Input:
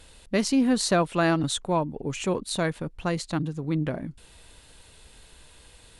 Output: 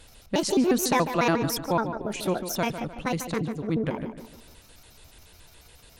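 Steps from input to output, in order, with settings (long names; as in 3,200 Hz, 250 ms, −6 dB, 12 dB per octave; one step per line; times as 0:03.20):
pitch shifter gated in a rhythm +6.5 semitones, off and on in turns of 71 ms
tape delay 148 ms, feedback 44%, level −9 dB, low-pass 3,400 Hz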